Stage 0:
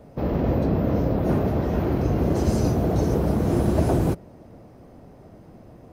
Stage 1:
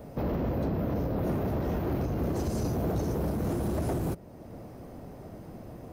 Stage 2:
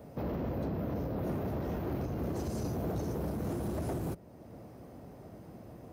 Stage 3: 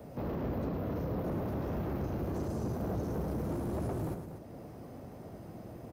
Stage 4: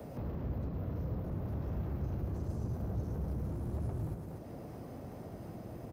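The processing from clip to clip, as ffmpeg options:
-af "highshelf=f=11000:g=10.5,alimiter=limit=0.0944:level=0:latency=1:release=500,asoftclip=type=tanh:threshold=0.0501,volume=1.33"
-af "highpass=55,volume=0.562"
-filter_complex "[0:a]acrossover=split=180|1500[s0][s1][s2];[s2]alimiter=level_in=17.8:limit=0.0631:level=0:latency=1:release=37,volume=0.0562[s3];[s0][s1][s3]amix=inputs=3:normalize=0,asoftclip=type=tanh:threshold=0.0237,aecho=1:1:107|241:0.376|0.316,volume=1.26"
-filter_complex "[0:a]acrossover=split=140[s0][s1];[s1]acompressor=threshold=0.00447:ratio=6[s2];[s0][s2]amix=inputs=2:normalize=0,volume=1.41"

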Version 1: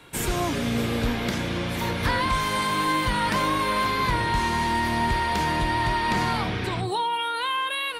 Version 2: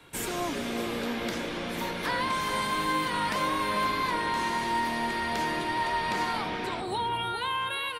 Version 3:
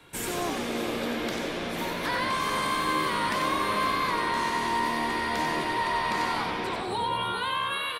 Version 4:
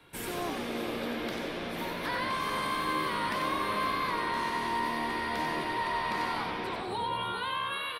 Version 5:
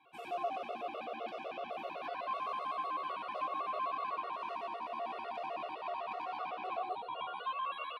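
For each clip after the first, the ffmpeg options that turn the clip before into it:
-filter_complex "[0:a]asplit=2[s0][s1];[s1]adelay=417,lowpass=f=1200:p=1,volume=0.473,asplit=2[s2][s3];[s3]adelay=417,lowpass=f=1200:p=1,volume=0.32,asplit=2[s4][s5];[s5]adelay=417,lowpass=f=1200:p=1,volume=0.32,asplit=2[s6][s7];[s7]adelay=417,lowpass=f=1200:p=1,volume=0.32[s8];[s0][s2][s4][s6][s8]amix=inputs=5:normalize=0,acrossover=split=200|3700[s9][s10][s11];[s9]aeval=exprs='0.0168*(abs(mod(val(0)/0.0168+3,4)-2)-1)':c=same[s12];[s12][s10][s11]amix=inputs=3:normalize=0,volume=0.596"
-filter_complex "[0:a]asplit=6[s0][s1][s2][s3][s4][s5];[s1]adelay=93,afreqshift=72,volume=0.562[s6];[s2]adelay=186,afreqshift=144,volume=0.248[s7];[s3]adelay=279,afreqshift=216,volume=0.108[s8];[s4]adelay=372,afreqshift=288,volume=0.0479[s9];[s5]adelay=465,afreqshift=360,volume=0.0211[s10];[s0][s6][s7][s8][s9][s10]amix=inputs=6:normalize=0"
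-af "equalizer=f=7100:w=2:g=-8,volume=0.631"
-filter_complex "[0:a]alimiter=level_in=1.12:limit=0.0631:level=0:latency=1:release=100,volume=0.891,asplit=3[s0][s1][s2];[s0]bandpass=f=730:t=q:w=8,volume=1[s3];[s1]bandpass=f=1090:t=q:w=8,volume=0.501[s4];[s2]bandpass=f=2440:t=q:w=8,volume=0.355[s5];[s3][s4][s5]amix=inputs=3:normalize=0,afftfilt=real='re*gt(sin(2*PI*7.9*pts/sr)*(1-2*mod(floor(b*sr/1024/370),2)),0)':imag='im*gt(sin(2*PI*7.9*pts/sr)*(1-2*mod(floor(b*sr/1024/370),2)),0)':win_size=1024:overlap=0.75,volume=2.99"

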